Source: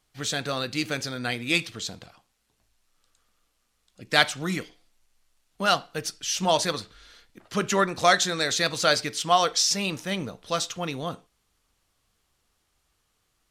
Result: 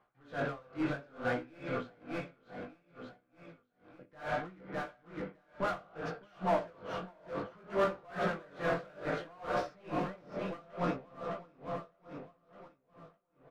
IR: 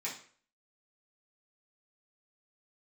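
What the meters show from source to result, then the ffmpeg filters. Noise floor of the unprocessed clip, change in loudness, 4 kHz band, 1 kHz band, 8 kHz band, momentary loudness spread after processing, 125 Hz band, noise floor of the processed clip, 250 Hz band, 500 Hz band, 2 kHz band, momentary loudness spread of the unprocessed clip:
−73 dBFS, −13.0 dB, −26.0 dB, −10.5 dB, below −30 dB, 18 LU, −8.0 dB, −74 dBFS, −7.5 dB, −7.0 dB, −13.0 dB, 12 LU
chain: -filter_complex "[0:a]lowpass=1500,asplit=2[link_01][link_02];[1:a]atrim=start_sample=2205,asetrate=28224,aresample=44100,highshelf=frequency=3500:gain=-12[link_03];[link_02][link_03]afir=irnorm=-1:irlink=0,volume=-5dB[link_04];[link_01][link_04]amix=inputs=2:normalize=0,asoftclip=type=hard:threshold=-21dB,asplit=2[link_05][link_06];[link_06]highpass=frequency=720:poles=1,volume=21dB,asoftclip=type=tanh:threshold=-21dB[link_07];[link_05][link_07]amix=inputs=2:normalize=0,lowpass=frequency=1000:poles=1,volume=-6dB,aecho=1:1:609|1218|1827|2436|3045:0.473|0.218|0.1|0.0461|0.0212,flanger=delay=15:depth=7.4:speed=0.63,aeval=exprs='val(0)*pow(10,-28*(0.5-0.5*cos(2*PI*2.3*n/s))/20)':channel_layout=same"

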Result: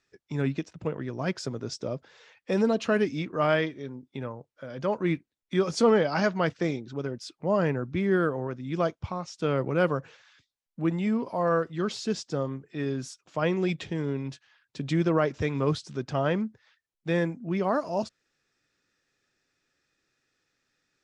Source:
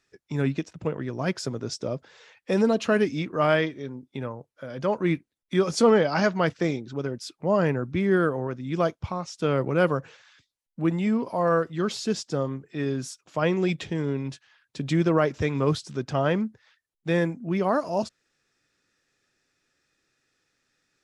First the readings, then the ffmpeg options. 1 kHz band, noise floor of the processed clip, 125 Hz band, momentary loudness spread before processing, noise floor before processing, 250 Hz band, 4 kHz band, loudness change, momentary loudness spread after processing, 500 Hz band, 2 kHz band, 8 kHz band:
−2.5 dB, below −85 dBFS, −2.5 dB, 11 LU, −84 dBFS, −2.5 dB, −3.0 dB, −2.5 dB, 11 LU, −2.5 dB, −2.5 dB, −4.0 dB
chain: -af "lowpass=7900,volume=-2.5dB"

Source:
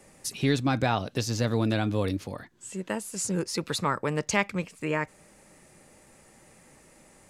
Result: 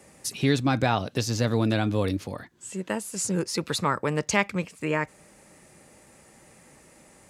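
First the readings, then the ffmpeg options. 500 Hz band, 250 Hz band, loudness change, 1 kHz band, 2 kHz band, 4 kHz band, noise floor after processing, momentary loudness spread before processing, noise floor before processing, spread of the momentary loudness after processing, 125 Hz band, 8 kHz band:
+2.0 dB, +2.0 dB, +2.0 dB, +2.0 dB, +2.0 dB, +2.0 dB, −55 dBFS, 11 LU, −57 dBFS, 11 LU, +2.0 dB, +2.0 dB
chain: -af "highpass=42,volume=2dB"

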